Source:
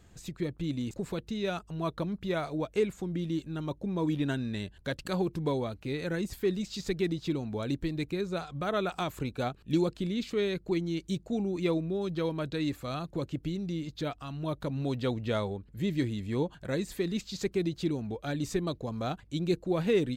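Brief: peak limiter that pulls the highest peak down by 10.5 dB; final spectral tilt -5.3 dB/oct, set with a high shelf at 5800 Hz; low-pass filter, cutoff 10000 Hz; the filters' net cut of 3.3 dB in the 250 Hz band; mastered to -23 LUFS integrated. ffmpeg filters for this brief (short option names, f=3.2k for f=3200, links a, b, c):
-af "lowpass=10k,equalizer=f=250:t=o:g=-5,highshelf=f=5.8k:g=6.5,volume=15dB,alimiter=limit=-13dB:level=0:latency=1"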